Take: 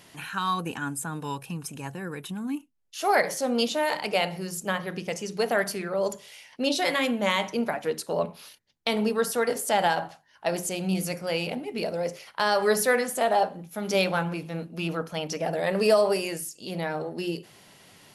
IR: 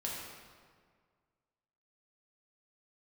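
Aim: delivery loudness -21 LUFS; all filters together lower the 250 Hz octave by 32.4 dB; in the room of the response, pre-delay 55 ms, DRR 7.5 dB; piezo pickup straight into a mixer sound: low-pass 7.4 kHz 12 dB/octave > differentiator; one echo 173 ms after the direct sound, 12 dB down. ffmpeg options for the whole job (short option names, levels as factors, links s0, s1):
-filter_complex "[0:a]equalizer=f=250:t=o:g=-4.5,aecho=1:1:173:0.251,asplit=2[s0][s1];[1:a]atrim=start_sample=2205,adelay=55[s2];[s1][s2]afir=irnorm=-1:irlink=0,volume=0.335[s3];[s0][s3]amix=inputs=2:normalize=0,lowpass=7400,aderivative,volume=7.94"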